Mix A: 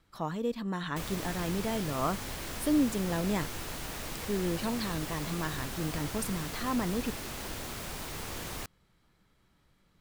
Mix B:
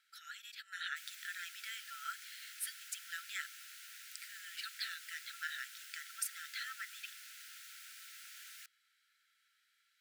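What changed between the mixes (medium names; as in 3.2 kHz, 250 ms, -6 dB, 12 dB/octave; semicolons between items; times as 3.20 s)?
background -10.5 dB; master: add brick-wall FIR high-pass 1.3 kHz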